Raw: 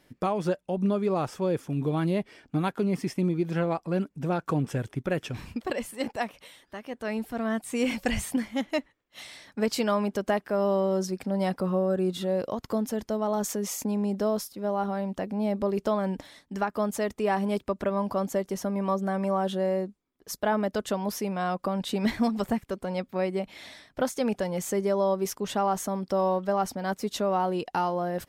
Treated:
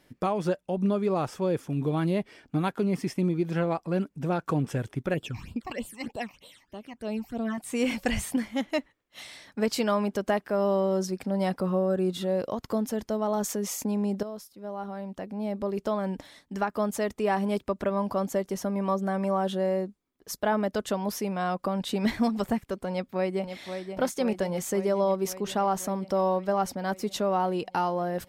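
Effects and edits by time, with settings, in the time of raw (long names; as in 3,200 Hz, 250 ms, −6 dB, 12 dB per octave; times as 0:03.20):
0:05.14–0:07.58: all-pass phaser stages 8, 3.2 Hz, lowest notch 440–2,000 Hz
0:14.23–0:16.61: fade in, from −12.5 dB
0:22.90–0:23.56: delay throw 530 ms, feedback 75%, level −8 dB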